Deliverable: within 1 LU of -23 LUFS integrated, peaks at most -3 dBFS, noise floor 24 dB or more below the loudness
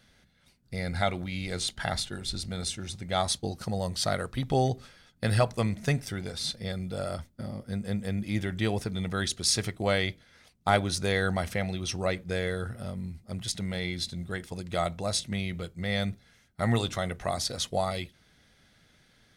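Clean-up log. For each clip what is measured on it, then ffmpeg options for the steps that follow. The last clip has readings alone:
loudness -30.5 LUFS; peak level -12.0 dBFS; loudness target -23.0 LUFS
-> -af "volume=2.37"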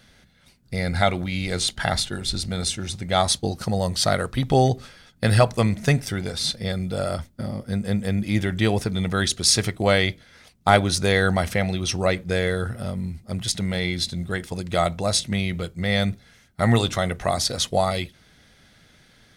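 loudness -23.0 LUFS; peak level -4.5 dBFS; noise floor -56 dBFS

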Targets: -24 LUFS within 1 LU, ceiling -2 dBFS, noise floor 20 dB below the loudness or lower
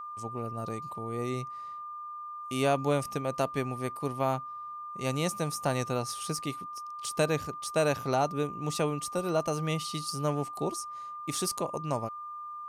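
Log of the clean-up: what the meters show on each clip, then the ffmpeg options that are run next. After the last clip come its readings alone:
steady tone 1.2 kHz; tone level -38 dBFS; loudness -32.5 LUFS; peak level -13.5 dBFS; loudness target -24.0 LUFS
-> -af "bandreject=f=1200:w=30"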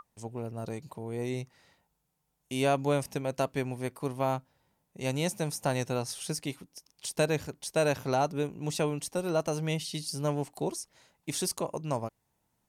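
steady tone not found; loudness -32.5 LUFS; peak level -14.0 dBFS; loudness target -24.0 LUFS
-> -af "volume=2.66"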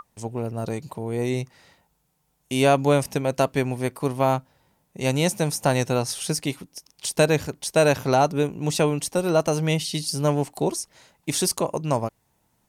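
loudness -24.0 LUFS; peak level -5.5 dBFS; noise floor -70 dBFS

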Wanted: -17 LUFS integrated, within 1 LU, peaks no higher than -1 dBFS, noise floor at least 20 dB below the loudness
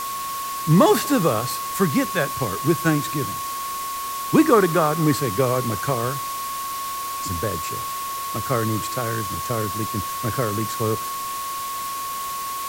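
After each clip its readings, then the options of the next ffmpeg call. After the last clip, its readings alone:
steady tone 1.1 kHz; tone level -27 dBFS; noise floor -29 dBFS; noise floor target -43 dBFS; loudness -22.5 LUFS; peak level -3.0 dBFS; loudness target -17.0 LUFS
-> -af "bandreject=f=1100:w=30"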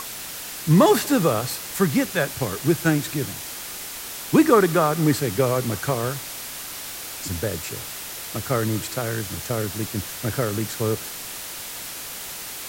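steady tone not found; noise floor -35 dBFS; noise floor target -44 dBFS
-> -af "afftdn=nr=9:nf=-35"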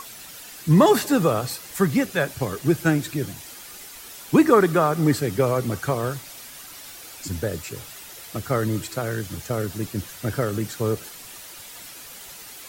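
noise floor -41 dBFS; noise floor target -43 dBFS
-> -af "afftdn=nr=6:nf=-41"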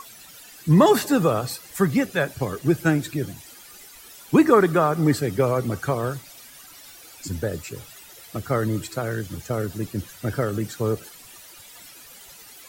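noise floor -46 dBFS; loudness -23.0 LUFS; peak level -3.5 dBFS; loudness target -17.0 LUFS
-> -af "volume=2,alimiter=limit=0.891:level=0:latency=1"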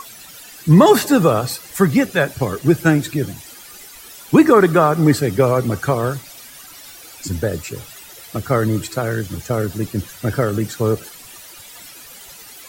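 loudness -17.0 LUFS; peak level -1.0 dBFS; noise floor -40 dBFS

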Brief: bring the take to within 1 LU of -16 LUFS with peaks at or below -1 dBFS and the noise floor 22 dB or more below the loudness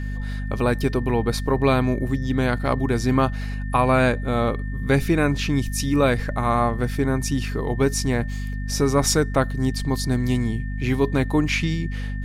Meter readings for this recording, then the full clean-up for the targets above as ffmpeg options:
hum 50 Hz; highest harmonic 250 Hz; hum level -25 dBFS; steady tone 1.8 kHz; tone level -40 dBFS; loudness -22.5 LUFS; peak level -5.5 dBFS; loudness target -16.0 LUFS
-> -af "bandreject=f=50:t=h:w=6,bandreject=f=100:t=h:w=6,bandreject=f=150:t=h:w=6,bandreject=f=200:t=h:w=6,bandreject=f=250:t=h:w=6"
-af "bandreject=f=1800:w=30"
-af "volume=2.11,alimiter=limit=0.891:level=0:latency=1"

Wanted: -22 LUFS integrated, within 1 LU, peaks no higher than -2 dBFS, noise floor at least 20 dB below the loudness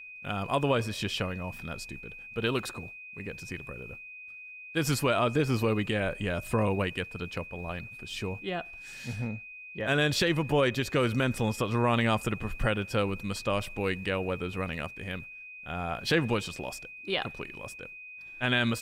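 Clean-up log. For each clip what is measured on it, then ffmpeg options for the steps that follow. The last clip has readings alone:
steady tone 2.5 kHz; tone level -43 dBFS; loudness -30.5 LUFS; peak level -14.0 dBFS; loudness target -22.0 LUFS
-> -af "bandreject=f=2500:w=30"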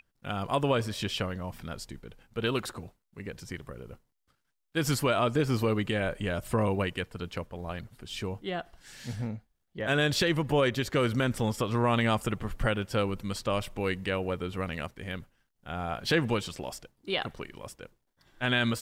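steady tone not found; loudness -30.5 LUFS; peak level -14.5 dBFS; loudness target -22.0 LUFS
-> -af "volume=2.66"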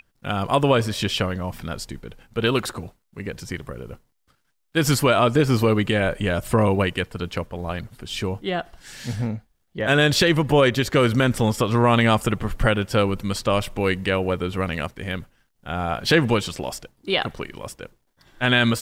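loudness -22.0 LUFS; peak level -6.0 dBFS; noise floor -69 dBFS

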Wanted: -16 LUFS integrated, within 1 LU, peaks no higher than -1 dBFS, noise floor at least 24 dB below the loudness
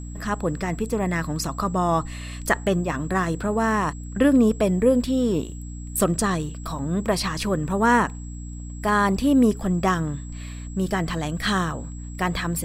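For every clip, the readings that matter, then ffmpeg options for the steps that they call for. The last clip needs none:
hum 60 Hz; highest harmonic 300 Hz; hum level -32 dBFS; steady tone 7.7 kHz; tone level -46 dBFS; loudness -23.0 LUFS; peak level -6.0 dBFS; loudness target -16.0 LUFS
-> -af "bandreject=f=60:t=h:w=6,bandreject=f=120:t=h:w=6,bandreject=f=180:t=h:w=6,bandreject=f=240:t=h:w=6,bandreject=f=300:t=h:w=6"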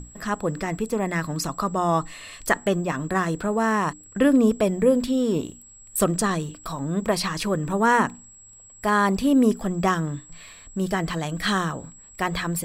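hum not found; steady tone 7.7 kHz; tone level -46 dBFS
-> -af "bandreject=f=7700:w=30"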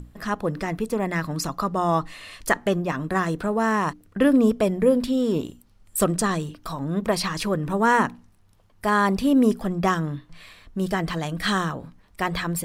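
steady tone not found; loudness -23.5 LUFS; peak level -5.5 dBFS; loudness target -16.0 LUFS
-> -af "volume=2.37,alimiter=limit=0.891:level=0:latency=1"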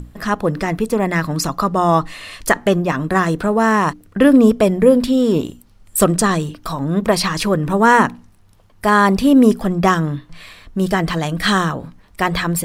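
loudness -16.5 LUFS; peak level -1.0 dBFS; noise floor -49 dBFS

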